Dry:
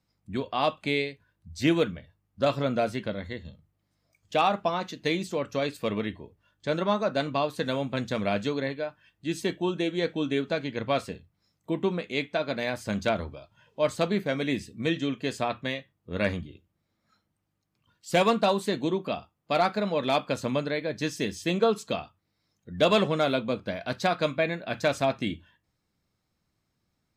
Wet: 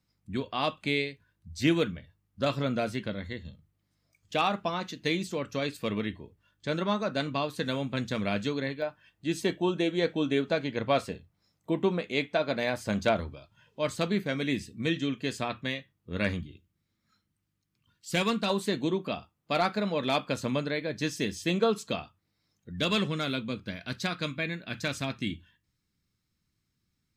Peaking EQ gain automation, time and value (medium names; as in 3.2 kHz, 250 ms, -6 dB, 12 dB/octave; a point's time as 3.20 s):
peaking EQ 680 Hz 1.4 oct
-5.5 dB
from 8.82 s +1 dB
from 13.20 s -6 dB
from 16.43 s -12 dB
from 18.50 s -4 dB
from 22.71 s -14 dB